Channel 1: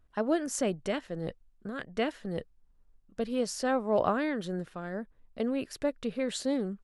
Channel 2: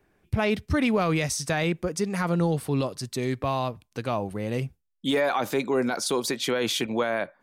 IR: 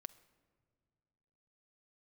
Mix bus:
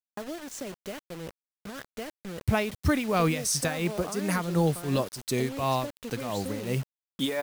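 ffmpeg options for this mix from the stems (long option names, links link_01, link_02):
-filter_complex "[0:a]lowpass=7800,acompressor=threshold=-31dB:ratio=6,volume=-10dB[link_01];[1:a]highshelf=frequency=8100:gain=10.5,tremolo=f=2.8:d=0.72,adelay=2150,volume=-6dB,asplit=2[link_02][link_03];[link_03]volume=-22.5dB[link_04];[2:a]atrim=start_sample=2205[link_05];[link_04][link_05]afir=irnorm=-1:irlink=0[link_06];[link_01][link_02][link_06]amix=inputs=3:normalize=0,acontrast=83,acrusher=bits=6:mix=0:aa=0.000001"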